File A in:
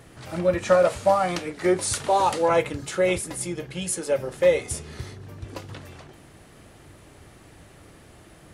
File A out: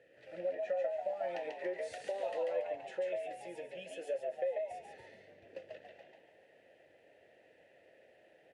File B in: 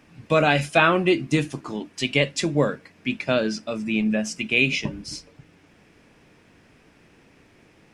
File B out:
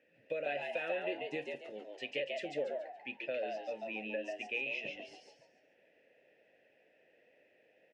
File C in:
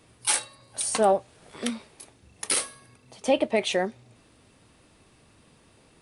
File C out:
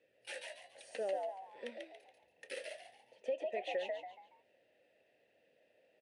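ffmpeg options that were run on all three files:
-filter_complex "[0:a]asplit=3[link_01][link_02][link_03];[link_01]bandpass=frequency=530:width_type=q:width=8,volume=0dB[link_04];[link_02]bandpass=frequency=1840:width_type=q:width=8,volume=-6dB[link_05];[link_03]bandpass=frequency=2480:width_type=q:width=8,volume=-9dB[link_06];[link_04][link_05][link_06]amix=inputs=3:normalize=0,acompressor=threshold=-32dB:ratio=5,asplit=5[link_07][link_08][link_09][link_10][link_11];[link_08]adelay=141,afreqshift=93,volume=-3dB[link_12];[link_09]adelay=282,afreqshift=186,volume=-12.4dB[link_13];[link_10]adelay=423,afreqshift=279,volume=-21.7dB[link_14];[link_11]adelay=564,afreqshift=372,volume=-31.1dB[link_15];[link_07][link_12][link_13][link_14][link_15]amix=inputs=5:normalize=0,volume=-3dB"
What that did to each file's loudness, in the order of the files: −15.5, −16.5, −16.5 LU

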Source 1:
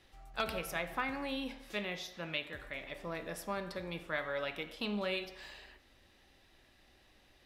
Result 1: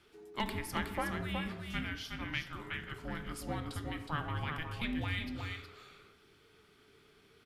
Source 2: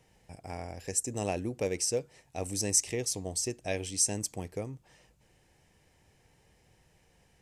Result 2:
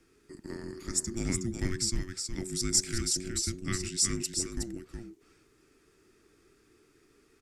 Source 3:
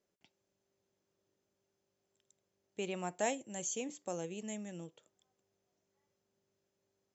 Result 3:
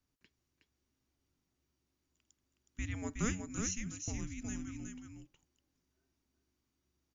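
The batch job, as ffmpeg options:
-af "aecho=1:1:367:0.531,afreqshift=-460"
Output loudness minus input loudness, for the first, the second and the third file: 0.0, +0.5, 0.0 LU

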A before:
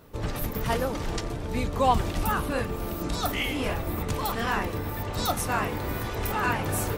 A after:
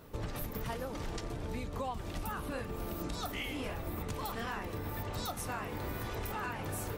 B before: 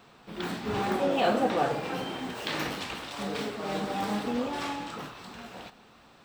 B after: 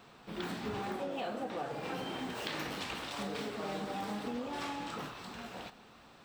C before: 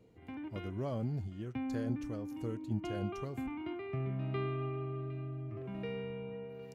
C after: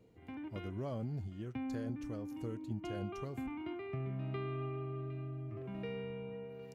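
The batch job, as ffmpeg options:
-af "acompressor=threshold=-33dB:ratio=12,volume=-1.5dB"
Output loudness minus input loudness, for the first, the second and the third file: −10.5, −8.5, −2.5 LU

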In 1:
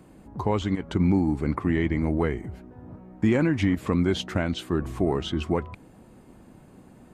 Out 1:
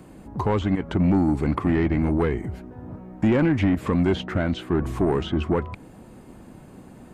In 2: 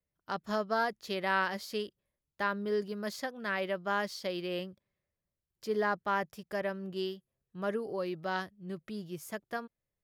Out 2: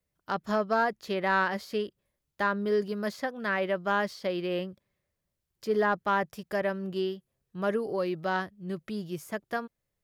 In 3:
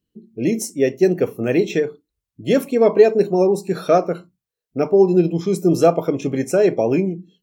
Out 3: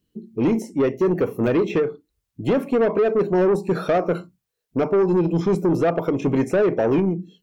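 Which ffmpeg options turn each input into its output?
-filter_complex "[0:a]acrossover=split=2600[link_01][link_02];[link_02]acompressor=threshold=-52dB:ratio=5[link_03];[link_01][link_03]amix=inputs=2:normalize=0,alimiter=limit=-12dB:level=0:latency=1:release=228,asoftclip=type=tanh:threshold=-19dB,volume=5.5dB"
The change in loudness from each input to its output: +2.5, +4.5, −3.0 LU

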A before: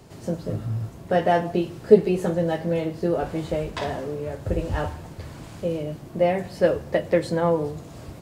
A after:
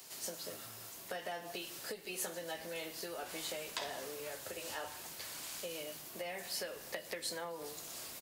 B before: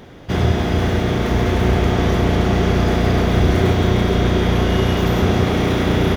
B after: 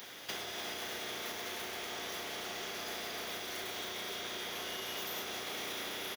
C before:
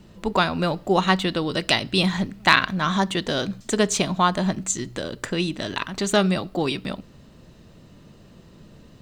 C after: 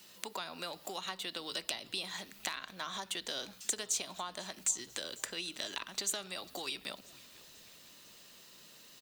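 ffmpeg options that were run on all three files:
-filter_complex "[0:a]acompressor=threshold=-23dB:ratio=4,equalizer=frequency=8000:width_type=o:width=0.71:gain=-3,bandreject=frequency=50:width_type=h:width=6,bandreject=frequency=100:width_type=h:width=6,bandreject=frequency=150:width_type=h:width=6,acrossover=split=270|850[link_01][link_02][link_03];[link_01]acompressor=threshold=-36dB:ratio=4[link_04];[link_02]acompressor=threshold=-31dB:ratio=4[link_05];[link_03]acompressor=threshold=-41dB:ratio=4[link_06];[link_04][link_05][link_06]amix=inputs=3:normalize=0,aderivative,asplit=5[link_07][link_08][link_09][link_10][link_11];[link_08]adelay=495,afreqshift=-140,volume=-22dB[link_12];[link_09]adelay=990,afreqshift=-280,volume=-27dB[link_13];[link_10]adelay=1485,afreqshift=-420,volume=-32.1dB[link_14];[link_11]adelay=1980,afreqshift=-560,volume=-37.1dB[link_15];[link_07][link_12][link_13][link_14][link_15]amix=inputs=5:normalize=0,volume=10dB"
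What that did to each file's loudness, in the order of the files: −17.5, −21.5, −15.5 LU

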